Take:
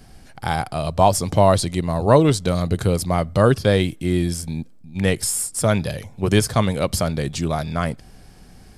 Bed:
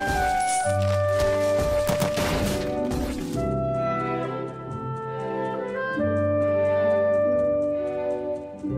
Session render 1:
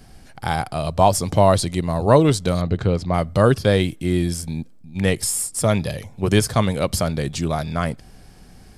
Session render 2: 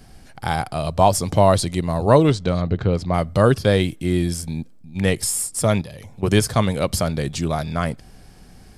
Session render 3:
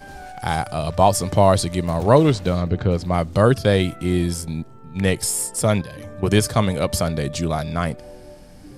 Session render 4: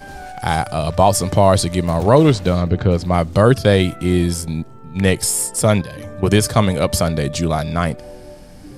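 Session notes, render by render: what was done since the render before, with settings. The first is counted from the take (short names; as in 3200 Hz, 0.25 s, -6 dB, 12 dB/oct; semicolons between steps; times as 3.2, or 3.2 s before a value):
2.61–3.14 air absorption 150 m; 5.1–6.05 notch 1500 Hz, Q 11
2.31–2.93 air absorption 100 m; 5.81–6.23 compressor 5:1, threshold -33 dBFS
add bed -15 dB
gain +4 dB; limiter -1 dBFS, peak gain reduction 3 dB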